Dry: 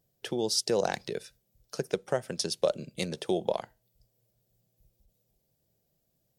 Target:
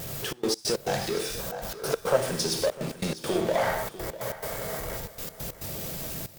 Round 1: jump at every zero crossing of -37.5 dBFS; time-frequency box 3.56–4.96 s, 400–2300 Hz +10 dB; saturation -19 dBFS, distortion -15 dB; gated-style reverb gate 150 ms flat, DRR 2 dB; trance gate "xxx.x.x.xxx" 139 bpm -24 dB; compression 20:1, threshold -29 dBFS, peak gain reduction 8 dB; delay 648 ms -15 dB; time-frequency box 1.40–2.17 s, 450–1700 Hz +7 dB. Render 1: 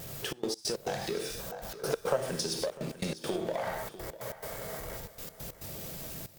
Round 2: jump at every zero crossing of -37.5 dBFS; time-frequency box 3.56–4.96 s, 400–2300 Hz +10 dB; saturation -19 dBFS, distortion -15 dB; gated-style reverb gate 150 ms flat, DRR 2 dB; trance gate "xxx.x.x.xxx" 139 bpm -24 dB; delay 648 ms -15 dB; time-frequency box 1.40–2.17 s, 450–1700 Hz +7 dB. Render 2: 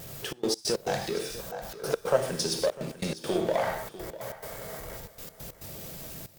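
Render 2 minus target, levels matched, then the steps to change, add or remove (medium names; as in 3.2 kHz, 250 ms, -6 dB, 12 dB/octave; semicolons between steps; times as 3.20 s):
jump at every zero crossing: distortion -5 dB
change: jump at every zero crossing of -31 dBFS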